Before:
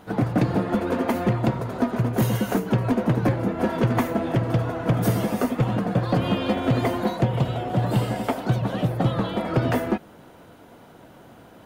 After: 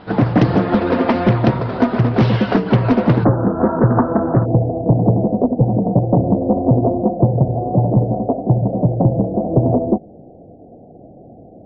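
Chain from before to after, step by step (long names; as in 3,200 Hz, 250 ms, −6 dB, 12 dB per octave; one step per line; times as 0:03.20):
Butterworth low-pass 5,100 Hz 96 dB per octave, from 0:03.23 1,500 Hz, from 0:04.44 770 Hz
highs frequency-modulated by the lows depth 0.3 ms
level +8 dB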